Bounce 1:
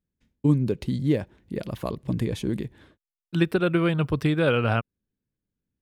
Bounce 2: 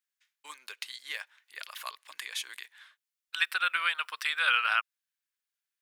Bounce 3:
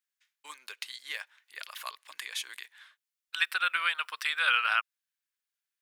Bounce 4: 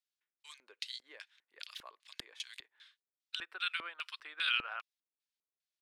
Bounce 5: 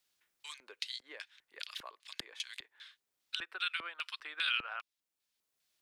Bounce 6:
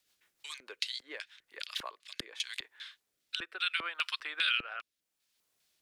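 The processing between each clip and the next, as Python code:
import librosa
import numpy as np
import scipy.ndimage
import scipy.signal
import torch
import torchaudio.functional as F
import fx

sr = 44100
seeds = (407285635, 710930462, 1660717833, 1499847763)

y1 = scipy.signal.sosfilt(scipy.signal.butter(4, 1300.0, 'highpass', fs=sr, output='sos'), x)
y1 = y1 * 10.0 ** (5.0 / 20.0)
y2 = y1
y3 = fx.filter_lfo_bandpass(y2, sr, shape='square', hz=2.5, low_hz=350.0, high_hz=4100.0, q=1.4)
y4 = fx.band_squash(y3, sr, depth_pct=40)
y4 = y4 * 10.0 ** (2.0 / 20.0)
y5 = fx.rotary_switch(y4, sr, hz=6.7, then_hz=0.75, switch_at_s=1.13)
y5 = y5 * 10.0 ** (7.5 / 20.0)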